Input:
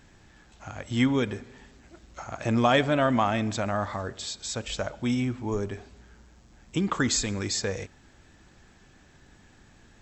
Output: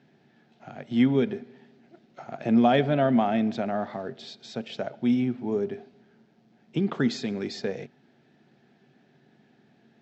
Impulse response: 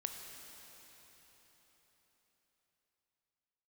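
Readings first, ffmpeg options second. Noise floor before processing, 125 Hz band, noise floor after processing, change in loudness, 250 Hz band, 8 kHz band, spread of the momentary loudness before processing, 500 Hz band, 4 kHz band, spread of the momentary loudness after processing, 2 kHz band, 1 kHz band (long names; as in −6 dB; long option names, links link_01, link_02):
−57 dBFS, −2.0 dB, −63 dBFS, +1.0 dB, +3.5 dB, below −15 dB, 18 LU, +1.5 dB, −6.0 dB, 17 LU, −5.0 dB, −1.0 dB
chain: -filter_complex "[0:a]asplit=2[link_01][link_02];[link_02]aeval=exprs='sgn(val(0))*max(abs(val(0))-0.00596,0)':channel_layout=same,volume=-7dB[link_03];[link_01][link_03]amix=inputs=2:normalize=0,highpass=frequency=140:width=0.5412,highpass=frequency=140:width=1.3066,equalizer=frequency=140:width_type=q:width=4:gain=10,equalizer=frequency=230:width_type=q:width=4:gain=10,equalizer=frequency=400:width_type=q:width=4:gain=9,equalizer=frequency=700:width_type=q:width=4:gain=8,equalizer=frequency=1100:width_type=q:width=4:gain=-7,lowpass=frequency=4700:width=0.5412,lowpass=frequency=4700:width=1.3066,volume=-7.5dB"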